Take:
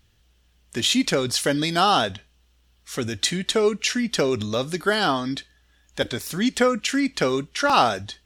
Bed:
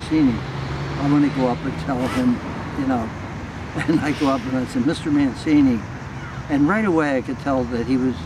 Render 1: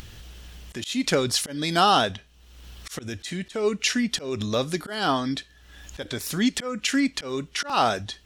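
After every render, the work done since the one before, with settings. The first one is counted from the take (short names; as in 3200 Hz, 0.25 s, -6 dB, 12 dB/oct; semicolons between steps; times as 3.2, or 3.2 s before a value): auto swell 0.259 s; upward compressor, threshold -27 dBFS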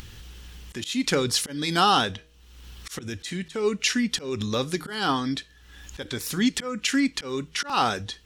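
bell 640 Hz -13 dB 0.21 oct; de-hum 158.5 Hz, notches 4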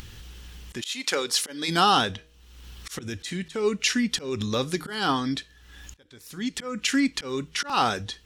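0.8–1.67 HPF 700 Hz -> 300 Hz; 5.94–6.78 fade in quadratic, from -23 dB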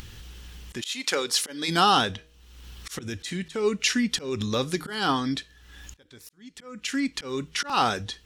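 6.29–7.45 fade in linear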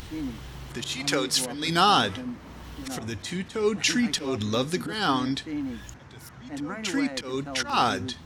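add bed -16.5 dB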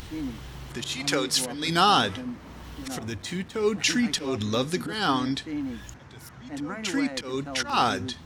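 3–3.97 backlash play -47.5 dBFS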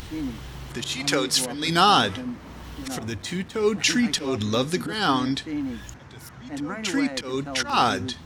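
gain +2.5 dB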